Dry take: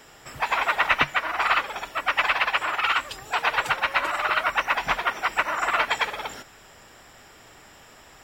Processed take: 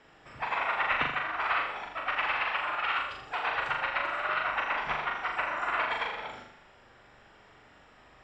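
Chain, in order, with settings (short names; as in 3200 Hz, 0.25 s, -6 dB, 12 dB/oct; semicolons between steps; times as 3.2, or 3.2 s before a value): LPF 3200 Hz 12 dB/oct; on a send: flutter echo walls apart 7 m, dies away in 0.68 s; on the sum: gain -8.5 dB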